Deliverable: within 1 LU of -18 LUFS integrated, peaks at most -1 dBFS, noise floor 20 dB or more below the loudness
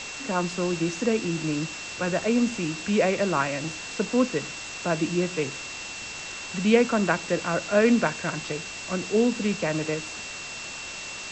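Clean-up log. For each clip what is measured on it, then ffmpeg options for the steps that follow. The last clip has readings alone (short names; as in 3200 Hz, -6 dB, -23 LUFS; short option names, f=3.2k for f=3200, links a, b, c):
steady tone 2700 Hz; tone level -38 dBFS; noise floor -37 dBFS; noise floor target -47 dBFS; loudness -26.5 LUFS; peak -7.0 dBFS; loudness target -18.0 LUFS
-> -af "bandreject=f=2.7k:w=30"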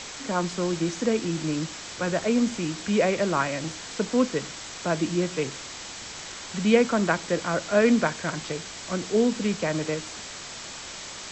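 steady tone none; noise floor -39 dBFS; noise floor target -47 dBFS
-> -af "afftdn=nr=8:nf=-39"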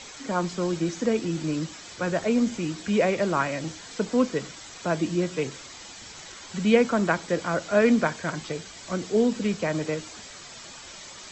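noise floor -44 dBFS; noise floor target -46 dBFS
-> -af "afftdn=nr=6:nf=-44"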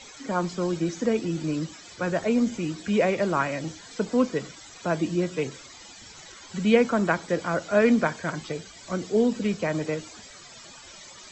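noise floor -47 dBFS; loudness -26.0 LUFS; peak -7.0 dBFS; loudness target -18.0 LUFS
-> -af "volume=8dB,alimiter=limit=-1dB:level=0:latency=1"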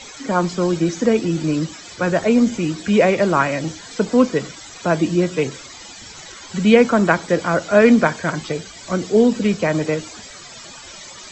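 loudness -18.5 LUFS; peak -1.0 dBFS; noise floor -39 dBFS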